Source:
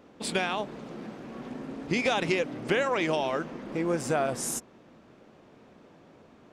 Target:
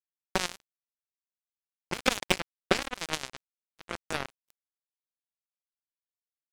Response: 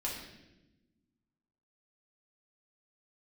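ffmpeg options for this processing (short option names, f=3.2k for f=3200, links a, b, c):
-af "acrusher=bits=2:mix=0:aa=0.5,volume=8dB"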